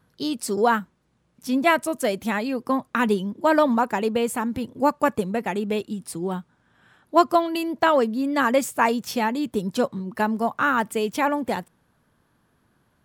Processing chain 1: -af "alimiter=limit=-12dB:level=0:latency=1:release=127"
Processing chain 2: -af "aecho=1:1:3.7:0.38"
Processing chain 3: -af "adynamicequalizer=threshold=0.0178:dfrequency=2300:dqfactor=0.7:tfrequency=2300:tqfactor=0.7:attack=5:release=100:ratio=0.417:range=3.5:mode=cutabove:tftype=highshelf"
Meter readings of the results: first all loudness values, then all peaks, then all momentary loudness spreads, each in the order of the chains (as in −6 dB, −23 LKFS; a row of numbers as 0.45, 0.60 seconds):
−25.0, −22.5, −23.5 LKFS; −12.0, −5.0, −5.5 dBFS; 6, 8, 9 LU